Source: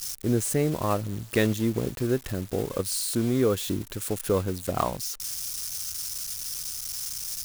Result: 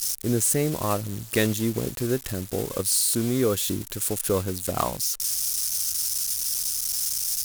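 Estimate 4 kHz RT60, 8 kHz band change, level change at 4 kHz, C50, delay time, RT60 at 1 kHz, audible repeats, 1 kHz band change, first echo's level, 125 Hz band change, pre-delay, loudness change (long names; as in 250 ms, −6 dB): no reverb audible, +7.5 dB, +5.0 dB, no reverb audible, no echo audible, no reverb audible, no echo audible, +0.5 dB, no echo audible, 0.0 dB, no reverb audible, +3.5 dB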